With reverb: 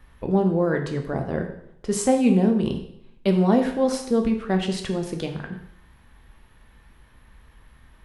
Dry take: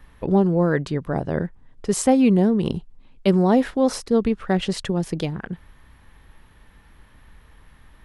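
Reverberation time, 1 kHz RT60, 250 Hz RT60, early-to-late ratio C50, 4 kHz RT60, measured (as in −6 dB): 0.75 s, 0.75 s, 0.75 s, 8.0 dB, 0.70 s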